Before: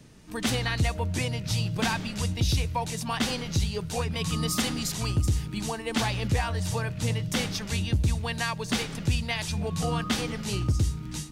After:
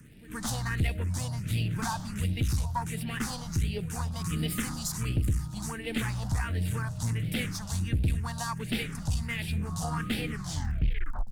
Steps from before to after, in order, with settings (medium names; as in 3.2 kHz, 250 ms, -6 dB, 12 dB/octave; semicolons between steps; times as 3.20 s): tape stop on the ending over 1.02 s; pre-echo 122 ms -19 dB; crackle 97 per s -44 dBFS; one-sided clip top -29 dBFS; phase shifter stages 4, 1.4 Hz, lowest notch 370–1100 Hz